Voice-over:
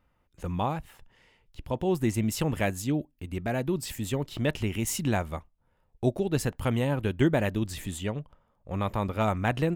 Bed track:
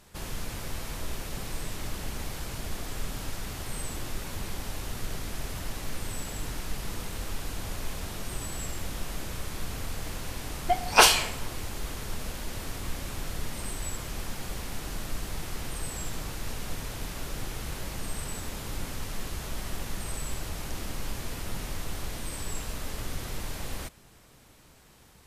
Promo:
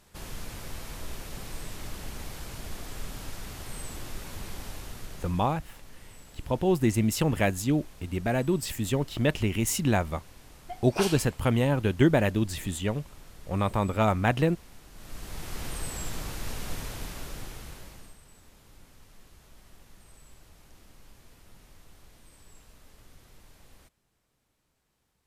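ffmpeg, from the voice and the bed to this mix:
-filter_complex "[0:a]adelay=4800,volume=2.5dB[a];[1:a]volume=11.5dB,afade=t=out:st=4.65:d=0.93:silence=0.266073,afade=t=in:st=14.93:d=0.72:silence=0.177828,afade=t=out:st=16.79:d=1.39:silence=0.105925[b];[a][b]amix=inputs=2:normalize=0"

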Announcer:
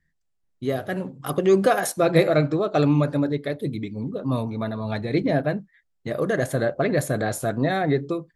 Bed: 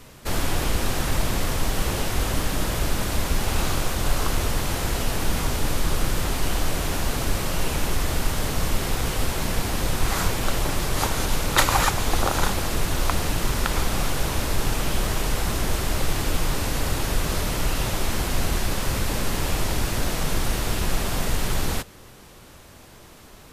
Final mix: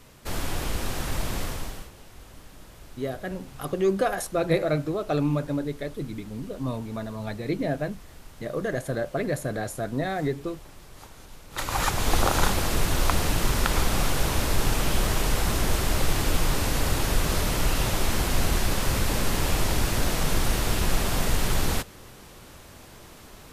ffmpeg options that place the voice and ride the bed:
-filter_complex "[0:a]adelay=2350,volume=-5.5dB[a];[1:a]volume=17.5dB,afade=t=out:st=1.41:d=0.49:silence=0.133352,afade=t=in:st=11.5:d=0.61:silence=0.0707946[b];[a][b]amix=inputs=2:normalize=0"

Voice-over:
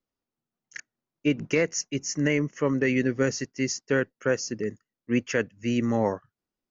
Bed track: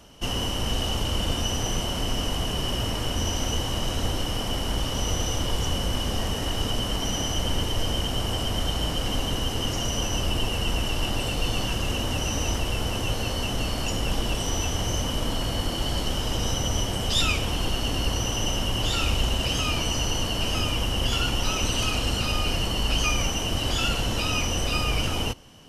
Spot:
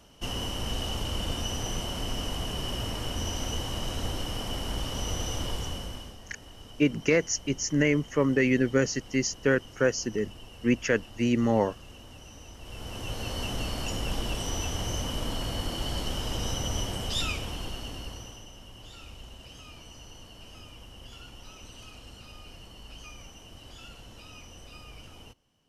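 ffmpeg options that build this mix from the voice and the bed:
-filter_complex "[0:a]adelay=5550,volume=0.5dB[a];[1:a]volume=10.5dB,afade=t=out:st=5.45:d=0.72:silence=0.16788,afade=t=in:st=12.57:d=0.85:silence=0.158489,afade=t=out:st=16.82:d=1.65:silence=0.141254[b];[a][b]amix=inputs=2:normalize=0"

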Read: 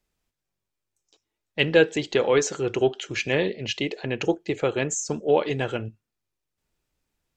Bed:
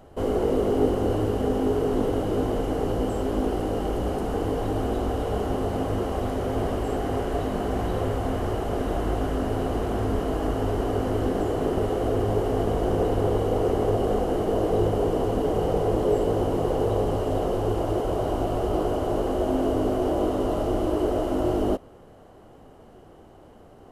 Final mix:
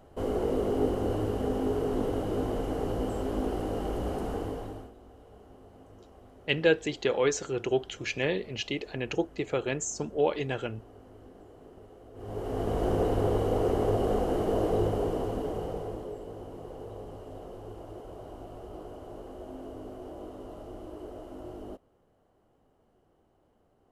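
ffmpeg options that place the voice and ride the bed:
-filter_complex "[0:a]adelay=4900,volume=-5.5dB[a];[1:a]volume=17.5dB,afade=t=out:st=4.27:d=0.65:silence=0.0891251,afade=t=in:st=12.14:d=0.71:silence=0.0707946,afade=t=out:st=14.62:d=1.53:silence=0.177828[b];[a][b]amix=inputs=2:normalize=0"

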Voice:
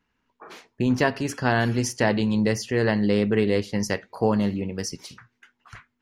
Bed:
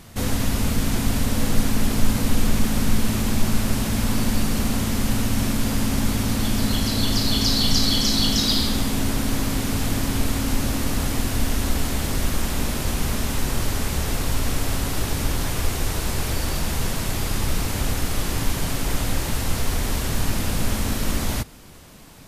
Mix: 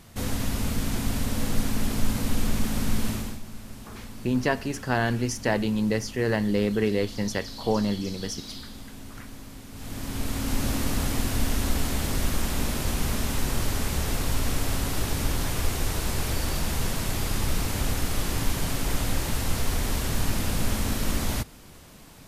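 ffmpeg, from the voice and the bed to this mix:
-filter_complex "[0:a]adelay=3450,volume=-3dB[a];[1:a]volume=11dB,afade=t=out:st=3.08:d=0.32:silence=0.199526,afade=t=in:st=9.72:d=0.97:silence=0.149624[b];[a][b]amix=inputs=2:normalize=0"

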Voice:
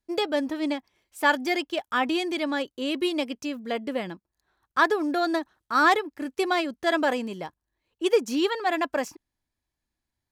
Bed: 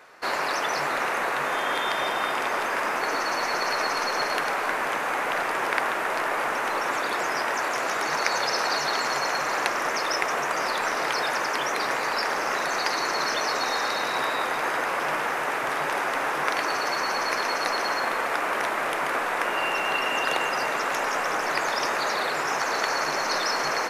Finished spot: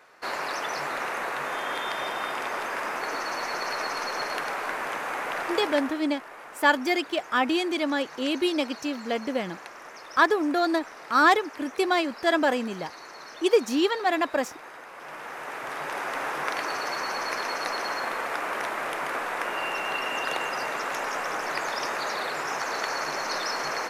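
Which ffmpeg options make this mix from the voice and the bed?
-filter_complex "[0:a]adelay=5400,volume=1dB[a];[1:a]volume=9dB,afade=t=out:st=5.54:d=0.51:silence=0.223872,afade=t=in:st=14.93:d=1.29:silence=0.211349[b];[a][b]amix=inputs=2:normalize=0"

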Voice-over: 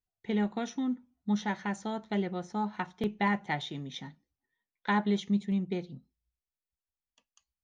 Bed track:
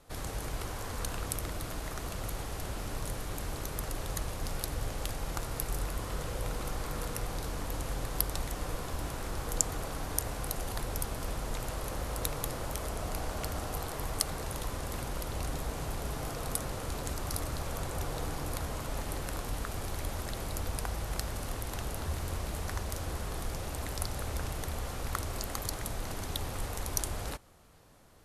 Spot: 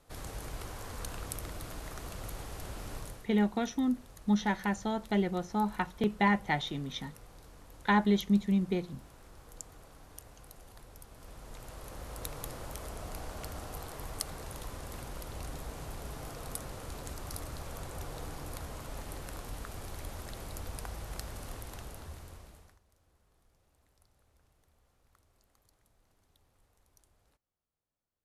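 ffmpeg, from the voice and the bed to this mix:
-filter_complex "[0:a]adelay=3000,volume=2dB[a];[1:a]volume=7dB,afade=t=out:st=2.96:d=0.32:silence=0.223872,afade=t=in:st=11.07:d=1.36:silence=0.266073,afade=t=out:st=21.54:d=1.25:silence=0.0398107[b];[a][b]amix=inputs=2:normalize=0"

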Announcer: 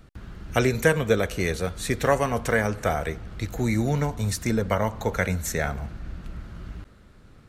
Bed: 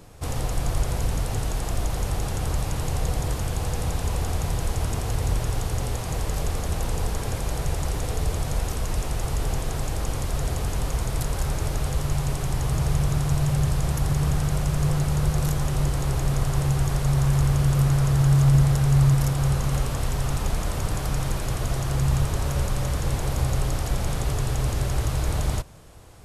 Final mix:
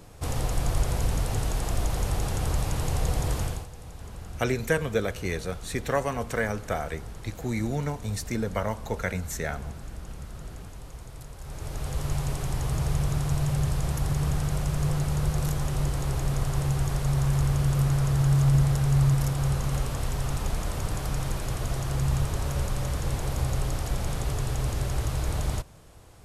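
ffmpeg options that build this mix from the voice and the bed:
-filter_complex "[0:a]adelay=3850,volume=-5dB[a];[1:a]volume=12dB,afade=t=out:st=3.42:d=0.25:silence=0.16788,afade=t=in:st=11.4:d=0.69:silence=0.223872[b];[a][b]amix=inputs=2:normalize=0"

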